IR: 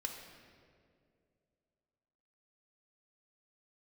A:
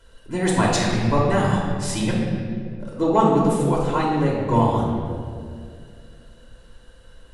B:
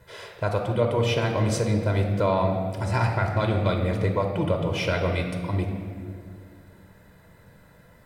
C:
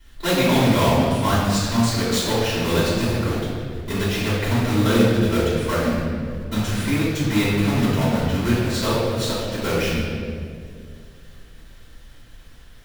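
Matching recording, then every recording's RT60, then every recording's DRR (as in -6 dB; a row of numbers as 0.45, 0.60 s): B; 2.3, 2.3, 2.3 s; -5.0, 2.0, -12.5 dB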